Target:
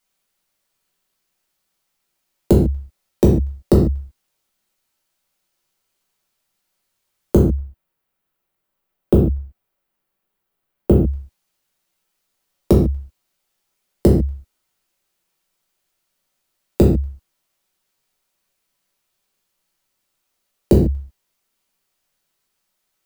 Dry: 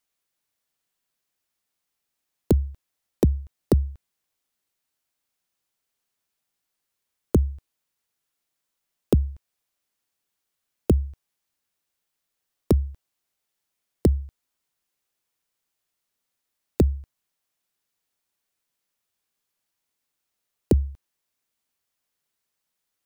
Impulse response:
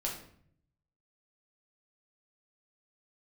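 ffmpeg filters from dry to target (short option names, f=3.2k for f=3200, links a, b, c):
-filter_complex "[0:a]asettb=1/sr,asplit=3[a][b][c];[a]atrim=end=7.454[d];[b]atrim=start=7.45:end=10.99,asetpts=PTS-STARTPTS,afade=t=in:d=0.004:c=qsin,afade=t=out:st=3.536:d=0.004:c=qsin,equalizer=f=6.2k:t=o:w=2.1:g=-13[e];[c]atrim=start=10.986[f];[d][e]acrossfade=d=0.004:c1=hsin:c2=qsin[g];[g][f]acrossfade=d=0.004:c1=qsin:c2=hsin[h];[1:a]atrim=start_sample=2205,afade=t=out:st=0.2:d=0.01,atrim=end_sample=9261[i];[h][i]afir=irnorm=-1:irlink=0,volume=5.5dB"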